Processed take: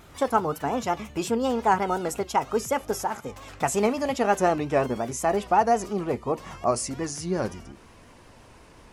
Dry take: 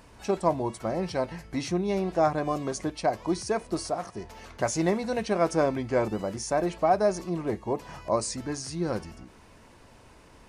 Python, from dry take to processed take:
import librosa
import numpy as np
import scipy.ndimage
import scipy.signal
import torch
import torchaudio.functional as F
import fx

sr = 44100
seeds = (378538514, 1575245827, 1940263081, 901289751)

y = fx.speed_glide(x, sr, from_pct=134, to_pct=101)
y = fx.vibrato(y, sr, rate_hz=5.6, depth_cents=68.0)
y = y * 10.0 ** (2.5 / 20.0)